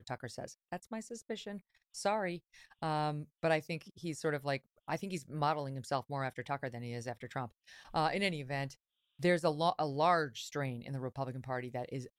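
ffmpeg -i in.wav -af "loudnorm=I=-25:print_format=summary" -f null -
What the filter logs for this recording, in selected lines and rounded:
Input Integrated:    -36.4 LUFS
Input True Peak:     -16.9 dBTP
Input LRA:             4.5 LU
Input Threshold:     -46.7 LUFS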